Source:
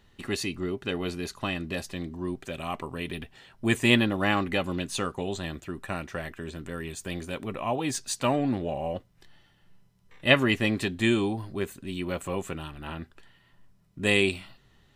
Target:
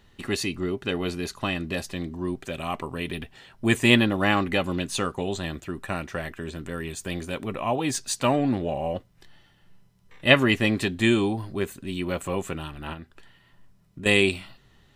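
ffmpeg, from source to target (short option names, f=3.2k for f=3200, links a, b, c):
-filter_complex "[0:a]asettb=1/sr,asplit=3[a][b][c];[a]atrim=end=12.934[d];[b]atrim=start=12.93:end=14.06,asetpts=PTS-STARTPTS,afade=t=in:d=0.004:c=qsin,afade=t=out:st=1.126:d=0.004:c=qsin,acompressor=threshold=-40dB:ratio=6[e];[c]atrim=start=14.056[f];[d][e]acrossfade=d=0.004:c1=hsin:c2=qsin[g];[g][f]acrossfade=d=0.004:c1=qsin:c2=hsin,volume=3dB"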